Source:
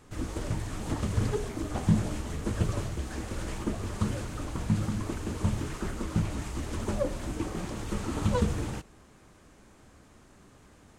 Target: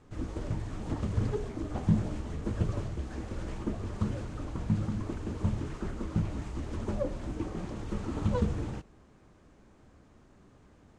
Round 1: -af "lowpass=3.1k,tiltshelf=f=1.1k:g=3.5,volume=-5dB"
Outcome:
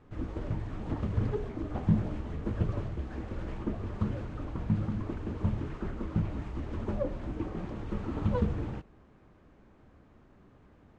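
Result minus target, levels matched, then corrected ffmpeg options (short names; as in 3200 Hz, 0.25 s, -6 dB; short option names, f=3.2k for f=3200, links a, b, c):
8000 Hz band -12.0 dB
-af "lowpass=7k,tiltshelf=f=1.1k:g=3.5,volume=-5dB"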